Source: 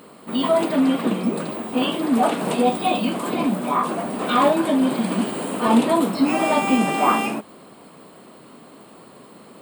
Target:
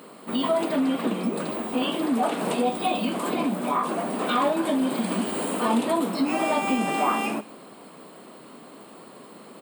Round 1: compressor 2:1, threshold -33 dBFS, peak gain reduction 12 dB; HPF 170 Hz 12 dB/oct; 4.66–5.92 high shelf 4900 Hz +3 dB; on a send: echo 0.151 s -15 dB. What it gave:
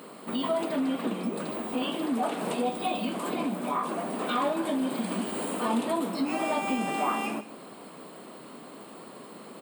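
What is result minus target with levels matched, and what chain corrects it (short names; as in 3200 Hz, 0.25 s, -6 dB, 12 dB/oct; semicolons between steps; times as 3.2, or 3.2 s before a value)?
echo-to-direct +7.5 dB; compressor: peak gain reduction +5 dB
compressor 2:1, threshold -23.5 dBFS, peak gain reduction 7 dB; HPF 170 Hz 12 dB/oct; 4.66–5.92 high shelf 4900 Hz +3 dB; on a send: echo 0.151 s -22.5 dB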